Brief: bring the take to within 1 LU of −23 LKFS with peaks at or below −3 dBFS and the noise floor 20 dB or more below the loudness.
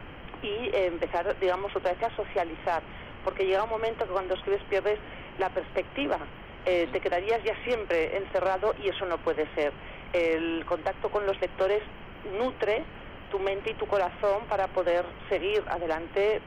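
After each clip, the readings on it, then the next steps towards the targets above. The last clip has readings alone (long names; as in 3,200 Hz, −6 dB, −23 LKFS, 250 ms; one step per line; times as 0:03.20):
share of clipped samples 1.6%; peaks flattened at −20.0 dBFS; background noise floor −44 dBFS; target noise floor −50 dBFS; integrated loudness −29.5 LKFS; sample peak −20.0 dBFS; target loudness −23.0 LKFS
→ clipped peaks rebuilt −20 dBFS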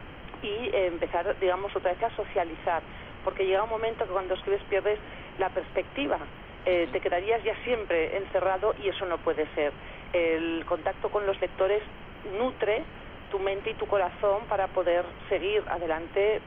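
share of clipped samples 0.0%; background noise floor −44 dBFS; target noise floor −49 dBFS
→ noise reduction from a noise print 6 dB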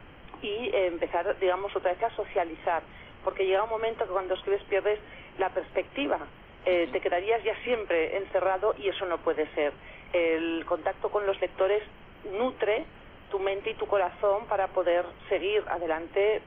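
background noise floor −50 dBFS; integrated loudness −29.0 LKFS; sample peak −14.5 dBFS; target loudness −23.0 LKFS
→ level +6 dB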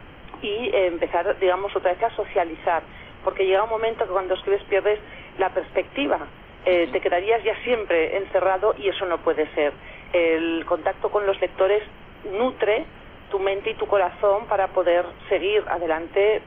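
integrated loudness −23.0 LKFS; sample peak −8.5 dBFS; background noise floor −44 dBFS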